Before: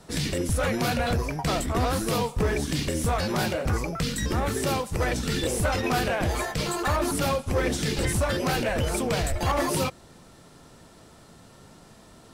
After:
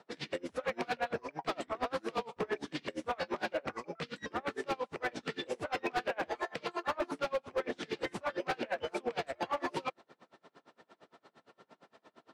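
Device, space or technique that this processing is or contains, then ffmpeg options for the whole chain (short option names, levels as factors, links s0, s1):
helicopter radio: -af "highpass=360,lowpass=2900,aeval=exprs='val(0)*pow(10,-31*(0.5-0.5*cos(2*PI*8.7*n/s))/20)':c=same,asoftclip=type=hard:threshold=0.0473"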